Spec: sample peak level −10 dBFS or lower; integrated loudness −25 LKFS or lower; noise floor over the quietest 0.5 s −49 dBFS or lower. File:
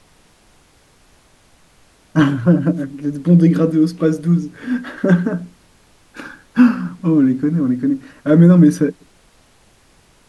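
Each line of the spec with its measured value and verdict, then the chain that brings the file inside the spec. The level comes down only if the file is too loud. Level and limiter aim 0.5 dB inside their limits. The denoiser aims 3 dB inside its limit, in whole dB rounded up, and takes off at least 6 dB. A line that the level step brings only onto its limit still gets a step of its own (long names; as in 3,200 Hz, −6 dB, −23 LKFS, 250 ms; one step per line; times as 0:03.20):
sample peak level −2.0 dBFS: out of spec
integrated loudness −15.5 LKFS: out of spec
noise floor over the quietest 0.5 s −52 dBFS: in spec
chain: level −10 dB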